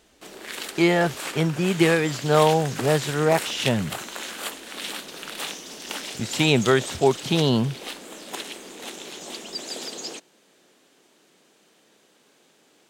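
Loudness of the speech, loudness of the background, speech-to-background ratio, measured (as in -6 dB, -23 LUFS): -22.0 LUFS, -33.0 LUFS, 11.0 dB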